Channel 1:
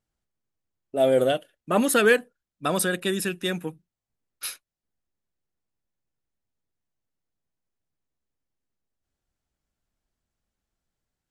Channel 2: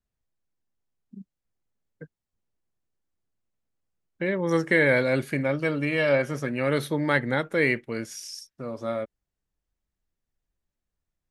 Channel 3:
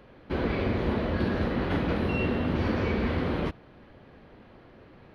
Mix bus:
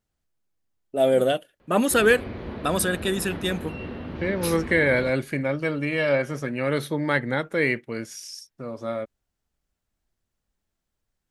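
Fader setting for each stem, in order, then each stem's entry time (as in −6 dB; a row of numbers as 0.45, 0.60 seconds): +0.5, 0.0, −7.5 decibels; 0.00, 0.00, 1.60 seconds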